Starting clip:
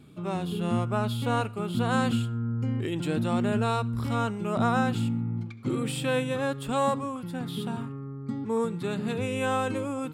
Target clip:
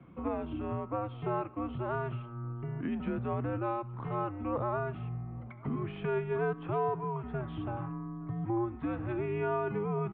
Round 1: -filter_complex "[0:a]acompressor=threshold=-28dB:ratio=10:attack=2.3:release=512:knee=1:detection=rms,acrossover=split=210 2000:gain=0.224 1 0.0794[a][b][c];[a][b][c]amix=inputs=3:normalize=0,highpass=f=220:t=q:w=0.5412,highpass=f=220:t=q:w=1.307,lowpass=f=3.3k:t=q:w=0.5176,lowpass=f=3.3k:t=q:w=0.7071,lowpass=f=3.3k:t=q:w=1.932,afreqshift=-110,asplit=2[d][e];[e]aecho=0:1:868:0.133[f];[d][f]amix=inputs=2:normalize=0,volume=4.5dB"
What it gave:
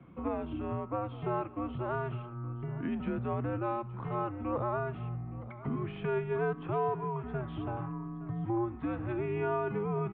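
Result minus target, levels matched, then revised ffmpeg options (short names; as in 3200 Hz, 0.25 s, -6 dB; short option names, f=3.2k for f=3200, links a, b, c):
echo-to-direct +9 dB
-filter_complex "[0:a]acompressor=threshold=-28dB:ratio=10:attack=2.3:release=512:knee=1:detection=rms,acrossover=split=210 2000:gain=0.224 1 0.0794[a][b][c];[a][b][c]amix=inputs=3:normalize=0,highpass=f=220:t=q:w=0.5412,highpass=f=220:t=q:w=1.307,lowpass=f=3.3k:t=q:w=0.5176,lowpass=f=3.3k:t=q:w=0.7071,lowpass=f=3.3k:t=q:w=1.932,afreqshift=-110,asplit=2[d][e];[e]aecho=0:1:868:0.0473[f];[d][f]amix=inputs=2:normalize=0,volume=4.5dB"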